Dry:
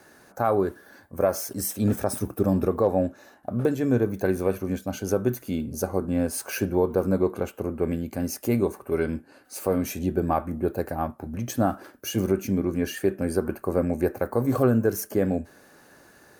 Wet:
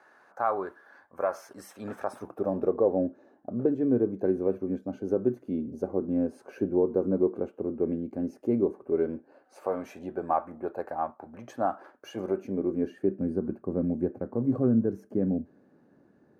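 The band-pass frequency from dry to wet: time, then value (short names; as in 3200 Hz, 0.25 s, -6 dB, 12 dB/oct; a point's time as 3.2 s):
band-pass, Q 1.3
2.03 s 1100 Hz
3.02 s 330 Hz
8.86 s 330 Hz
9.69 s 850 Hz
12.08 s 850 Hz
13.2 s 220 Hz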